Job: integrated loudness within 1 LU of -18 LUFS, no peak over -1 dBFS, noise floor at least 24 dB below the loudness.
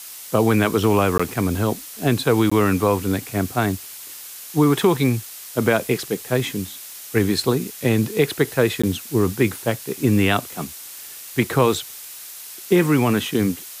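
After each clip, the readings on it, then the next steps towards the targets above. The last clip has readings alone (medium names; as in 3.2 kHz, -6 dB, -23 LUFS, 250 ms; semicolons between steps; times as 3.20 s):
dropouts 3; longest dropout 15 ms; noise floor -38 dBFS; noise floor target -45 dBFS; loudness -20.5 LUFS; peak level -4.0 dBFS; loudness target -18.0 LUFS
-> interpolate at 1.18/2.50/8.82 s, 15 ms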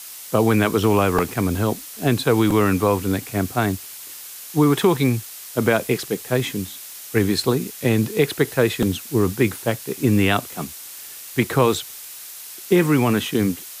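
dropouts 0; noise floor -38 dBFS; noise floor target -45 dBFS
-> noise print and reduce 7 dB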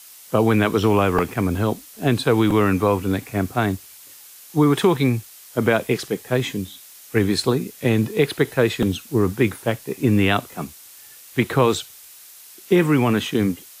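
noise floor -44 dBFS; noise floor target -45 dBFS
-> noise print and reduce 6 dB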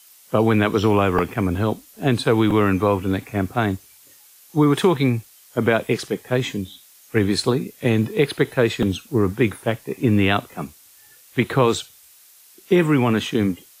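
noise floor -50 dBFS; loudness -20.5 LUFS; peak level -4.0 dBFS; loudness target -18.0 LUFS
-> trim +2.5 dB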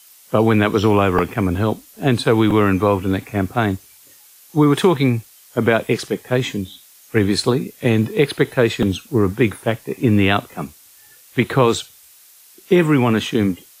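loudness -18.0 LUFS; peak level -1.5 dBFS; noise floor -48 dBFS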